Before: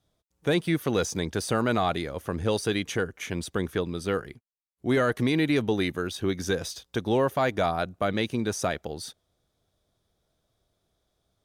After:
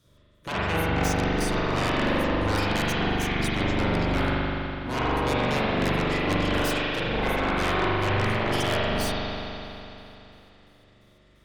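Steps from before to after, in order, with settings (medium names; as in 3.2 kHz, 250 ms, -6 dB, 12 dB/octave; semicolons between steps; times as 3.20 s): pitch shift switched off and on -11 st, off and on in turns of 172 ms; Butterworth band-stop 770 Hz, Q 2.8; reverse; compression 12:1, threshold -32 dBFS, peak gain reduction 13 dB; reverse; Chebyshev shaper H 3 -14 dB, 7 -15 dB, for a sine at -21 dBFS; in parallel at -11 dB: sine folder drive 11 dB, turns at -22 dBFS; on the sum: spring tank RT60 3.2 s, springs 41 ms, chirp 50 ms, DRR -8.5 dB; trim +3 dB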